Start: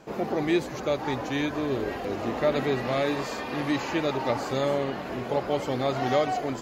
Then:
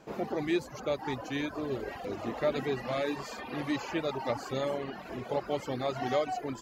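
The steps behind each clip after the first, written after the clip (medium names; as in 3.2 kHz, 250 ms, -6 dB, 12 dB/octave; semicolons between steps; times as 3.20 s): reverb removal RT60 0.96 s; trim -4.5 dB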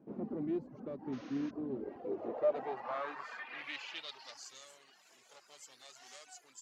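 valve stage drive 29 dB, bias 0.65; painted sound noise, 1.12–1.51 s, 960–6700 Hz -35 dBFS; band-pass sweep 240 Hz -> 7.6 kHz, 1.69–4.64 s; trim +5.5 dB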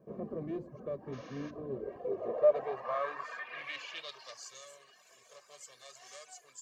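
reverberation RT60 0.45 s, pre-delay 4 ms, DRR 18 dB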